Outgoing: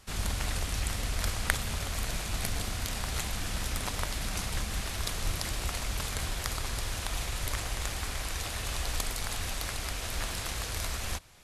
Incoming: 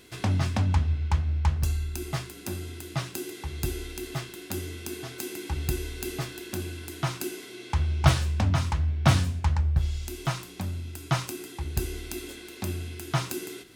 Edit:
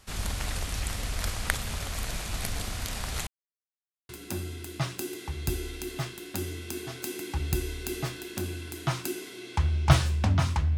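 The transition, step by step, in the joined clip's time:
outgoing
3.27–4.09 mute
4.09 switch to incoming from 2.25 s

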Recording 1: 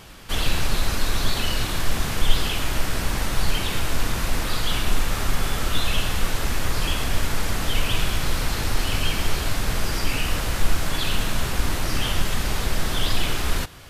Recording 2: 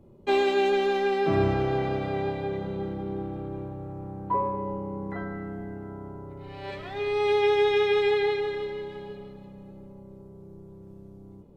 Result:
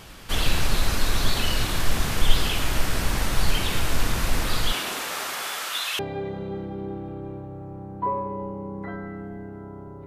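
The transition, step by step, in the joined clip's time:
recording 1
4.71–5.99 HPF 280 Hz -> 1200 Hz
5.99 switch to recording 2 from 2.27 s

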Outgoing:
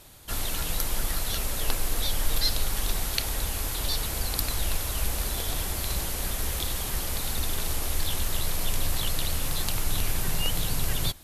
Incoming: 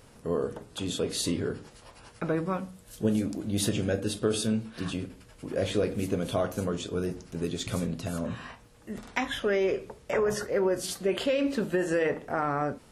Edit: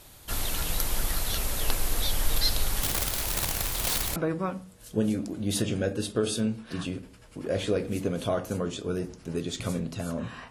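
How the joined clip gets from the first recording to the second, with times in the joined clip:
outgoing
2.82–4.16 wrapped overs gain 22.5 dB
4.16 switch to incoming from 2.23 s

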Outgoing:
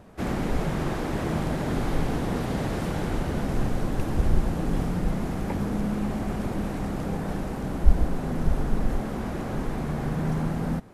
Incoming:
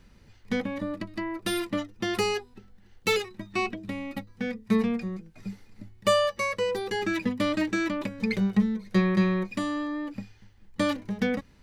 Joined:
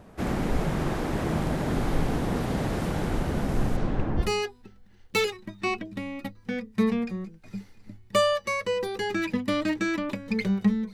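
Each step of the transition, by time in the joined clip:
outgoing
3.76–4.32 LPF 6200 Hz -> 1000 Hz
4.24 switch to incoming from 2.16 s, crossfade 0.16 s

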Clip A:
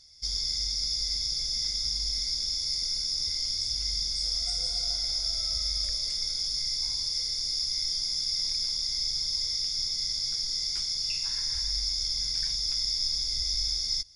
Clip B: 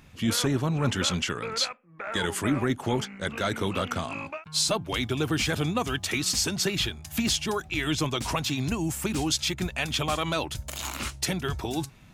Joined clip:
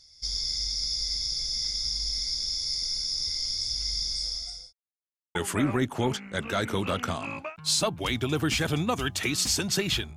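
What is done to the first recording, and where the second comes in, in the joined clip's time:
clip A
4.15–4.73 fade out linear
4.73–5.35 mute
5.35 switch to clip B from 2.23 s

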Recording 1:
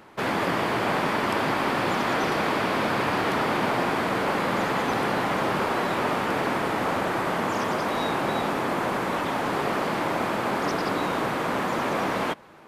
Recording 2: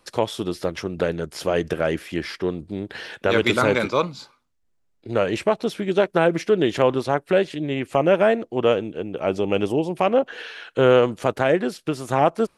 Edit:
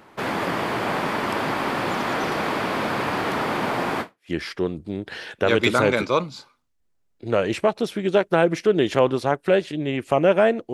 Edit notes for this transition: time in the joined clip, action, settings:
recording 1
4.16 switch to recording 2 from 1.99 s, crossfade 0.30 s exponential

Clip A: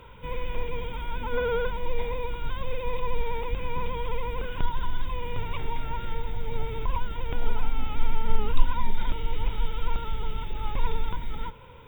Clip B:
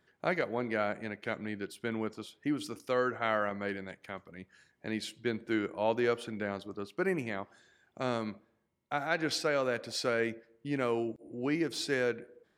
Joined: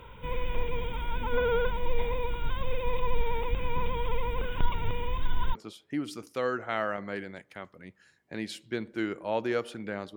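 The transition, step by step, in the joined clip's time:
clip A
4.72–5.55 reverse
5.55 switch to clip B from 2.08 s

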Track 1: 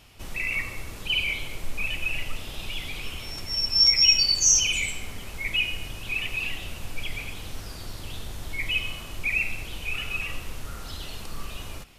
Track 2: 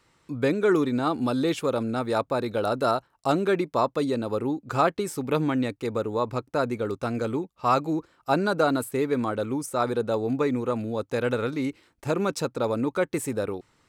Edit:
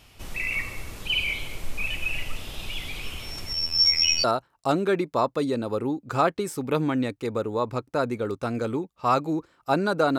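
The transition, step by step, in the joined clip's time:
track 1
3.53–4.24 robotiser 81.4 Hz
4.24 switch to track 2 from 2.84 s

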